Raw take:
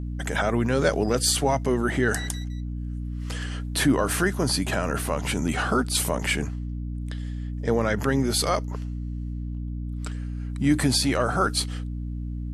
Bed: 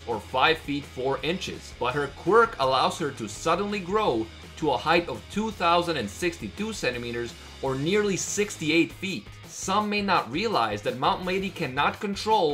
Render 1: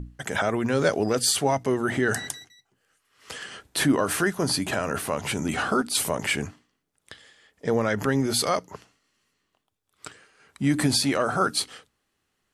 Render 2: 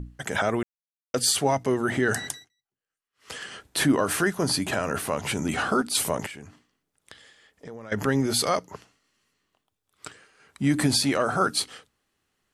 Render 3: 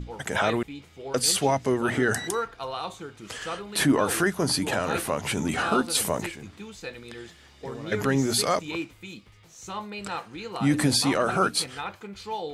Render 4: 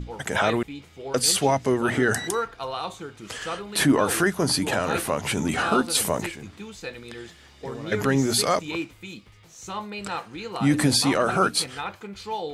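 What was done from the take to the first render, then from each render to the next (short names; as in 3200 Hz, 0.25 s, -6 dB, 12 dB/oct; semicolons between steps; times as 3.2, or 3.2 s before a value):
notches 60/120/180/240/300 Hz
0.63–1.14 mute; 2.32–3.32 dip -22 dB, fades 0.19 s; 6.26–7.92 compressor 3:1, threshold -42 dBFS
add bed -10.5 dB
gain +2 dB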